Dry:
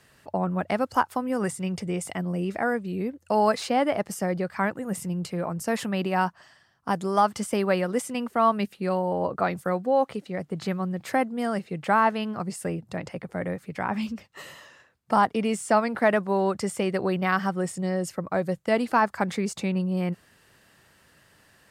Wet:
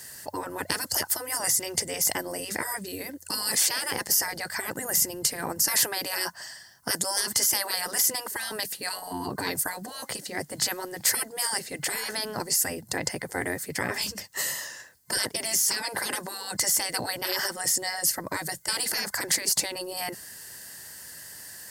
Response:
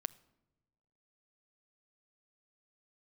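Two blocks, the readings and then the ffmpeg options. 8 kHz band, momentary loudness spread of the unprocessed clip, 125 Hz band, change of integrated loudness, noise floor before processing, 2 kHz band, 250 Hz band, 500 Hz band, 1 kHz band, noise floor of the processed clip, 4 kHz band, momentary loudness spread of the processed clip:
+16.0 dB, 9 LU, -12.0 dB, 0.0 dB, -60 dBFS, +0.5 dB, -12.5 dB, -10.5 dB, -10.0 dB, -50 dBFS, +12.0 dB, 13 LU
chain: -af "crystalizer=i=8:c=0,afftfilt=real='re*lt(hypot(re,im),0.158)':imag='im*lt(hypot(re,im),0.158)':win_size=1024:overlap=0.75,superequalizer=10b=0.501:12b=0.355:13b=0.447,volume=3.5dB"

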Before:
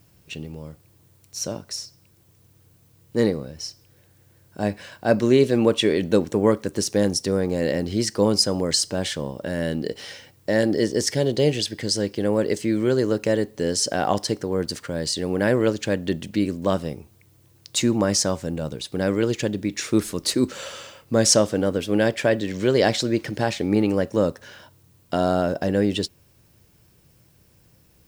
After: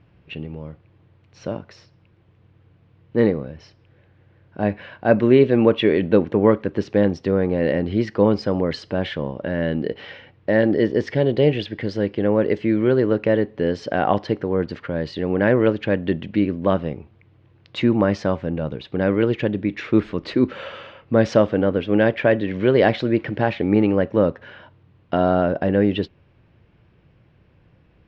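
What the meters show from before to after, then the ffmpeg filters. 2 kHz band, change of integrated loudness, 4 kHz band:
+3.0 dB, +2.5 dB, -8.0 dB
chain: -af "lowpass=f=2.9k:w=0.5412,lowpass=f=2.9k:w=1.3066,volume=3dB"

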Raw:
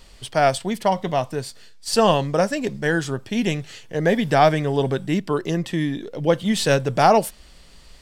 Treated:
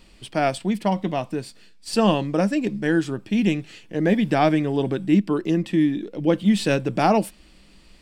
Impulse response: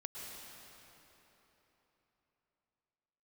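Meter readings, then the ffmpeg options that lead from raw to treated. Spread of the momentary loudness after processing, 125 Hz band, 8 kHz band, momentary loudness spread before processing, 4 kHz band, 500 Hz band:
9 LU, -1.5 dB, n/a, 10 LU, -4.5 dB, -3.5 dB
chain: -af "equalizer=f=200:t=o:w=0.33:g=11,equalizer=f=315:t=o:w=0.33:g=12,equalizer=f=2.5k:t=o:w=0.33:g=6,equalizer=f=6.3k:t=o:w=0.33:g=-4,equalizer=f=12.5k:t=o:w=0.33:g=-5,volume=-5dB"

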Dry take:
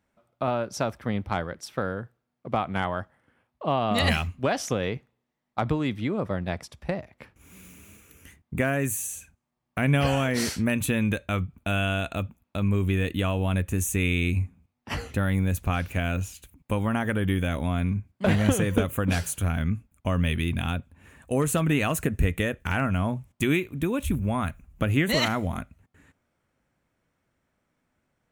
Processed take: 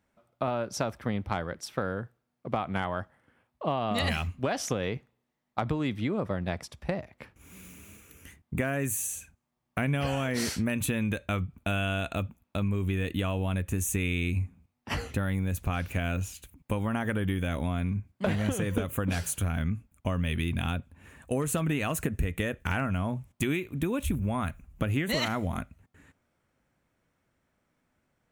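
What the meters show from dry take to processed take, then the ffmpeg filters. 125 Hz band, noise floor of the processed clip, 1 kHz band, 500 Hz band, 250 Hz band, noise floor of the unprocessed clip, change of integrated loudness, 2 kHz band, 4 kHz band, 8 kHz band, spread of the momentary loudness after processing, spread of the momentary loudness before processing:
-4.0 dB, -80 dBFS, -4.0 dB, -4.0 dB, -4.0 dB, -80 dBFS, -4.0 dB, -4.5 dB, -4.0 dB, -2.0 dB, 9 LU, 10 LU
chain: -af "acompressor=threshold=-25dB:ratio=4"

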